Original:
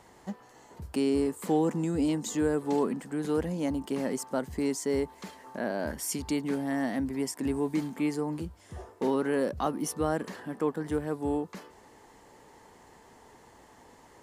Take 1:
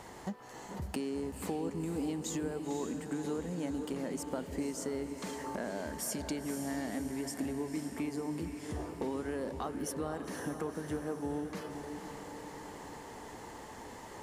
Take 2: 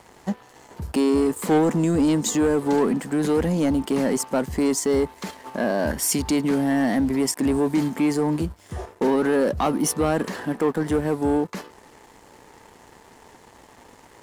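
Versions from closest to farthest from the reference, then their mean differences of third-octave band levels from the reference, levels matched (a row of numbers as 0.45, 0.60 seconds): 2, 1; 2.0, 8.5 decibels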